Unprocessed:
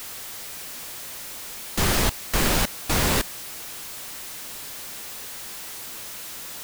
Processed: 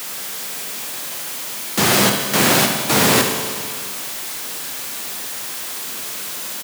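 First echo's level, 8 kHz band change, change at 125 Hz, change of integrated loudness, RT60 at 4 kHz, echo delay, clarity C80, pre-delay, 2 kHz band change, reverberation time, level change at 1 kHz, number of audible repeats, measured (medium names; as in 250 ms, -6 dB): -9.5 dB, +8.5 dB, +3.5 dB, +8.5 dB, 2.0 s, 70 ms, 6.5 dB, 8 ms, +9.0 dB, 2.0 s, +9.0 dB, 1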